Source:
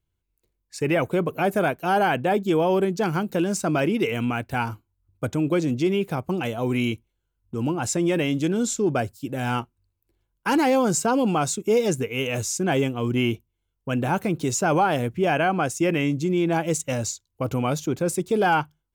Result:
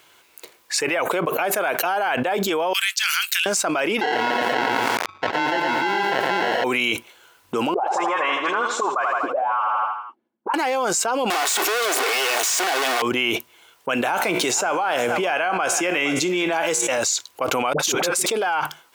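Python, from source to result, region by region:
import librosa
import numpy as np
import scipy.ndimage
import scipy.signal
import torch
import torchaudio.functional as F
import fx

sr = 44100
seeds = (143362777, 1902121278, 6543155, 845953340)

y = fx.chain(x, sr, fx.bessel_highpass(hz=3000.0, order=6),
    fx.band_widen(depth_pct=40), at=(2.73, 3.46))
y = fx.chain(y, sr, fx.sample_hold(seeds[0], rate_hz=1200.0, jitter_pct=0),
    fx.air_absorb(metres=200.0),
    fx.echo_crushed(ms=112, feedback_pct=35, bits=8, wet_db=-4), at=(4.01, 6.64))
y = fx.chain(y, sr, fx.auto_wah(base_hz=220.0, top_hz=1100.0, q=11.0, full_db=-21.5, direction='up'),
    fx.dispersion(late='highs', ms=55.0, hz=2400.0),
    fx.echo_feedback(ms=81, feedback_pct=55, wet_db=-10.0), at=(7.74, 10.54))
y = fx.chain(y, sr, fx.clip_1bit(),
    fx.highpass(hz=250.0, slope=24),
    fx.comb(ms=2.7, depth=0.37), at=(11.3, 13.02))
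y = fx.chain(y, sr, fx.comb_fb(f0_hz=60.0, decay_s=0.47, harmonics='all', damping=0.0, mix_pct=50),
    fx.echo_single(ms=461, db=-22.5),
    fx.band_squash(depth_pct=40), at=(13.94, 16.98))
y = fx.chain(y, sr, fx.over_compress(threshold_db=-32.0, ratio=-1.0),
    fx.dispersion(late='highs', ms=65.0, hz=690.0), at=(17.73, 18.26))
y = scipy.signal.sosfilt(scipy.signal.butter(2, 730.0, 'highpass', fs=sr, output='sos'), y)
y = fx.high_shelf(y, sr, hz=5800.0, db=-8.0)
y = fx.env_flatten(y, sr, amount_pct=100)
y = F.gain(torch.from_numpy(y), -1.5).numpy()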